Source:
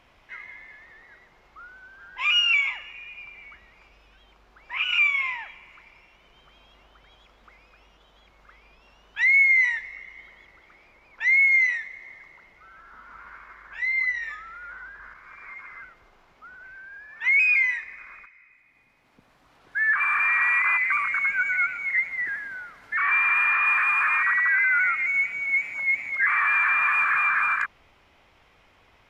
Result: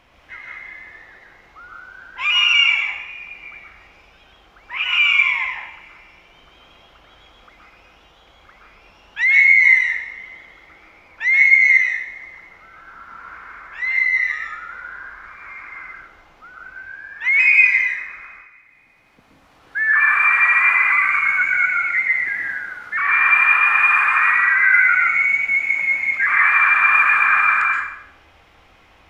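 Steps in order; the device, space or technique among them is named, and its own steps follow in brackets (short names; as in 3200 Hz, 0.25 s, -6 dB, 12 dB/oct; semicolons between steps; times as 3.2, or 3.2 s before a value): bathroom (reverb RT60 0.70 s, pre-delay 0.117 s, DRR -1.5 dB); gain +3.5 dB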